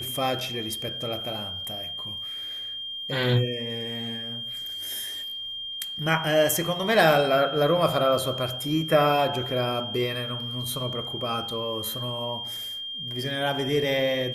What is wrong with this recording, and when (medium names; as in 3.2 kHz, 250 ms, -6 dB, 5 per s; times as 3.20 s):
whine 3.2 kHz -32 dBFS